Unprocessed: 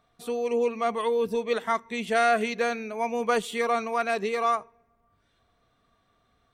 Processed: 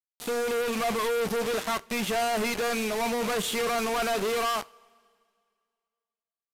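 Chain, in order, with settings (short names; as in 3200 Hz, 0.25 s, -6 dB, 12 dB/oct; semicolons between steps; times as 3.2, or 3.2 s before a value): companded quantiser 2-bit; two-slope reverb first 0.28 s, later 2.2 s, from -19 dB, DRR 16 dB; downsampling 32000 Hz; gain -1.5 dB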